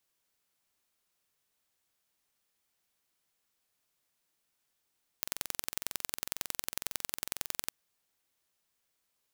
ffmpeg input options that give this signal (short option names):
-f lavfi -i "aevalsrc='0.596*eq(mod(n,2005),0)*(0.5+0.5*eq(mod(n,4010),0))':d=2.48:s=44100"